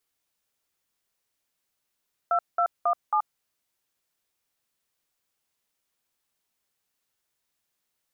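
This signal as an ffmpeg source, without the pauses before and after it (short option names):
-f lavfi -i "aevalsrc='0.075*clip(min(mod(t,0.272),0.079-mod(t,0.272))/0.002,0,1)*(eq(floor(t/0.272),0)*(sin(2*PI*697*mod(t,0.272))+sin(2*PI*1336*mod(t,0.272)))+eq(floor(t/0.272),1)*(sin(2*PI*697*mod(t,0.272))+sin(2*PI*1336*mod(t,0.272)))+eq(floor(t/0.272),2)*(sin(2*PI*697*mod(t,0.272))+sin(2*PI*1209*mod(t,0.272)))+eq(floor(t/0.272),3)*(sin(2*PI*852*mod(t,0.272))+sin(2*PI*1209*mod(t,0.272))))':d=1.088:s=44100"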